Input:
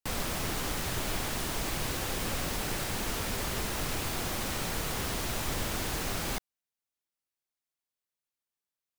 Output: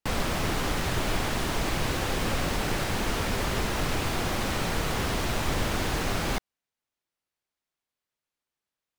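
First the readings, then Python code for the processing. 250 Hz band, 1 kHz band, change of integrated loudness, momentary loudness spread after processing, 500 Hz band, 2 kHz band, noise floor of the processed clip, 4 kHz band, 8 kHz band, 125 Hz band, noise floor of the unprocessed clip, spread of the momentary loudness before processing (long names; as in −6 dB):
+6.5 dB, +6.0 dB, +4.0 dB, 0 LU, +6.5 dB, +5.5 dB, below −85 dBFS, +3.5 dB, −0.5 dB, +6.5 dB, below −85 dBFS, 0 LU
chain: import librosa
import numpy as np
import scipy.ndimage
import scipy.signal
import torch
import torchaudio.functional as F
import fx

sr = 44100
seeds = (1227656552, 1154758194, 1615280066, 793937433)

y = fx.lowpass(x, sr, hz=3600.0, slope=6)
y = y * 10.0 ** (6.5 / 20.0)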